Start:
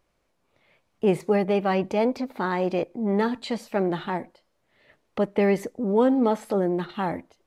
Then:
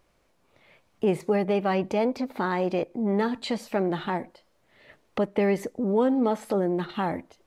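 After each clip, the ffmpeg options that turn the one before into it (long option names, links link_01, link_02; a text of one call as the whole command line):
ffmpeg -i in.wav -af "acompressor=threshold=-38dB:ratio=1.5,volume=5dB" out.wav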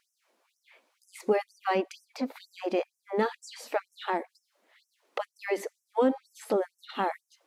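ffmpeg -i in.wav -af "afftfilt=real='re*gte(b*sr/1024,200*pow(5400/200,0.5+0.5*sin(2*PI*2.1*pts/sr)))':imag='im*gte(b*sr/1024,200*pow(5400/200,0.5+0.5*sin(2*PI*2.1*pts/sr)))':win_size=1024:overlap=0.75" out.wav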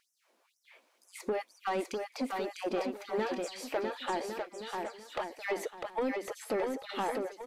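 ffmpeg -i in.wav -filter_complex "[0:a]acompressor=threshold=-26dB:ratio=6,asoftclip=type=tanh:threshold=-25dB,asplit=2[link_01][link_02];[link_02]aecho=0:1:650|1105|1424|1646|1803:0.631|0.398|0.251|0.158|0.1[link_03];[link_01][link_03]amix=inputs=2:normalize=0" out.wav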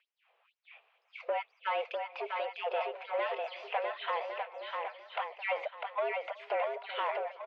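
ffmpeg -i in.wav -filter_complex "[0:a]aexciter=amount=1.2:drive=7.2:freq=2100,highpass=frequency=300:width_type=q:width=0.5412,highpass=frequency=300:width_type=q:width=1.307,lowpass=frequency=3300:width_type=q:width=0.5176,lowpass=frequency=3300:width_type=q:width=0.7071,lowpass=frequency=3300:width_type=q:width=1.932,afreqshift=150,asplit=2[link_01][link_02];[link_02]adelay=373,lowpass=frequency=1300:poles=1,volume=-20.5dB,asplit=2[link_03][link_04];[link_04]adelay=373,lowpass=frequency=1300:poles=1,volume=0.51,asplit=2[link_05][link_06];[link_06]adelay=373,lowpass=frequency=1300:poles=1,volume=0.51,asplit=2[link_07][link_08];[link_08]adelay=373,lowpass=frequency=1300:poles=1,volume=0.51[link_09];[link_01][link_03][link_05][link_07][link_09]amix=inputs=5:normalize=0" out.wav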